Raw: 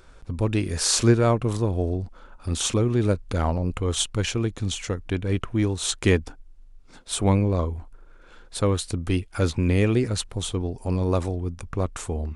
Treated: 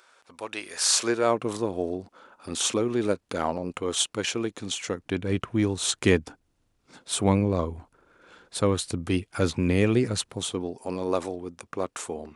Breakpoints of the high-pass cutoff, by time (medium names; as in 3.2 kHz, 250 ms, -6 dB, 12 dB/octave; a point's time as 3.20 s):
0.86 s 760 Hz
1.43 s 260 Hz
4.73 s 260 Hz
5.32 s 120 Hz
10.17 s 120 Hz
10.85 s 300 Hz